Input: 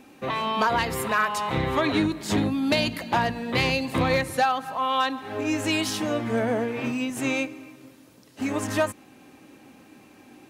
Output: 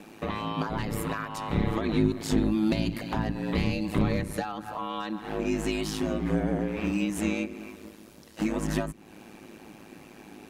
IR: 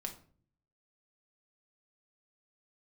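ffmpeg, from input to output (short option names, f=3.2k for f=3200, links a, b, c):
-filter_complex "[0:a]acrossover=split=290[a][b];[b]acompressor=threshold=-36dB:ratio=6[c];[a][c]amix=inputs=2:normalize=0,aeval=exprs='val(0)*sin(2*PI*53*n/s)':c=same,volume=5.5dB"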